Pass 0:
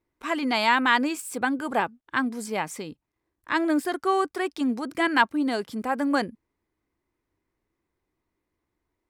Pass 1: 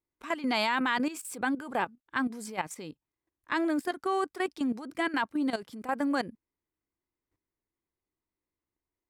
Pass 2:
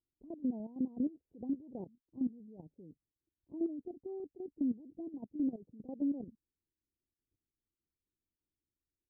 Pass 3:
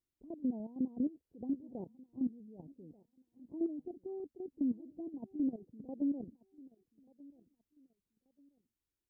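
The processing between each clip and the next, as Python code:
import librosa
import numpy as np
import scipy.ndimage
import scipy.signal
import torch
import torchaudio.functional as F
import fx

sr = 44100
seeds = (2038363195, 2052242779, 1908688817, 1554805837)

y1 = fx.level_steps(x, sr, step_db=13)
y1 = y1 * 10.0 ** (-1.5 / 20.0)
y2 = fx.tremolo_shape(y1, sr, shape='saw_down', hz=5.0, depth_pct=35)
y2 = scipy.ndimage.gaussian_filter1d(y2, 21.0, mode='constant')
y2 = fx.level_steps(y2, sr, step_db=11)
y2 = y2 * 10.0 ** (2.5 / 20.0)
y3 = fx.echo_feedback(y2, sr, ms=1185, feedback_pct=28, wet_db=-22)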